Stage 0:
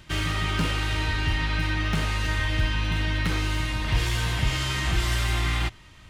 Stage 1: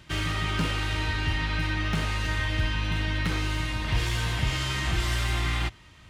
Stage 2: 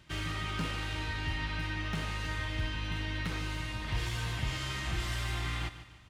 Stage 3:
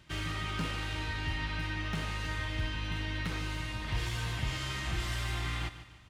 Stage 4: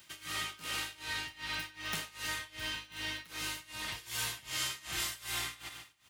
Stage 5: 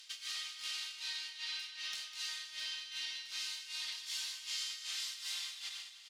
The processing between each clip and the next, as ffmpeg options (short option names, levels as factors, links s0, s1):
-af "highpass=40,highshelf=f=10000:g=-3.5,volume=0.841"
-af "aecho=1:1:147|294|441|588:0.224|0.094|0.0395|0.0166,volume=0.422"
-af anull
-af "aemphasis=mode=production:type=riaa,tremolo=f=2.6:d=0.92"
-af "acompressor=threshold=0.00891:ratio=6,bandpass=f=4600:t=q:w=1.8:csg=0,aecho=1:1:201|402|603|804|1005:0.282|0.141|0.0705|0.0352|0.0176,volume=2.66"